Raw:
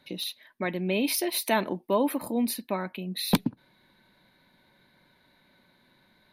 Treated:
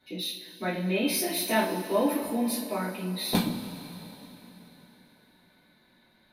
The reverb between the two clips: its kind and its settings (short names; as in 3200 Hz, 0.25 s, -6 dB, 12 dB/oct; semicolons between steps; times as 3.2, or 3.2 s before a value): two-slope reverb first 0.37 s, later 4 s, from -18 dB, DRR -9 dB; gain -9.5 dB